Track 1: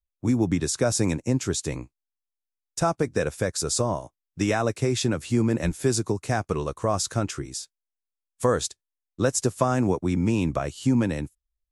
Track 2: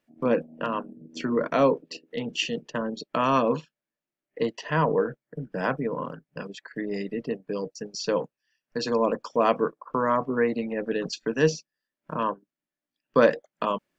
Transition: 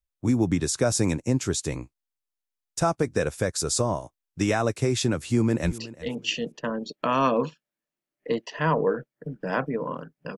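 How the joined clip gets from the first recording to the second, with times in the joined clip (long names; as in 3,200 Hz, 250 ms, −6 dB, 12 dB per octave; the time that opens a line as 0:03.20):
track 1
0:05.29–0:05.78: delay throw 370 ms, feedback 25%, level −17.5 dB
0:05.78: continue with track 2 from 0:01.89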